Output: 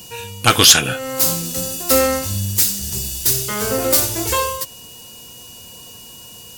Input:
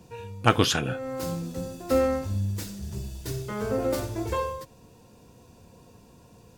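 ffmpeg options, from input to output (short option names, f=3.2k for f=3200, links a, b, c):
-af "crystalizer=i=9.5:c=0,aeval=exprs='val(0)+0.00501*sin(2*PI*2900*n/s)':c=same,acontrast=36,volume=-1dB"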